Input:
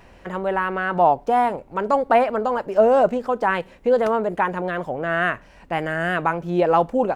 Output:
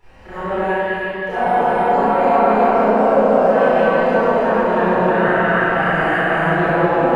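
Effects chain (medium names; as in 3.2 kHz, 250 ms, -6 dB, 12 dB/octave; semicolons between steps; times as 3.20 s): backward echo that repeats 159 ms, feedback 74%, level -0.5 dB; peak limiter -13 dBFS, peak gain reduction 11.5 dB; 0.59–1.29 s: brick-wall FIR high-pass 1.6 kHz; flutter echo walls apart 5.6 m, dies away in 0.24 s; reverberation RT60 3.5 s, pre-delay 23 ms, DRR -16 dB; trim -14 dB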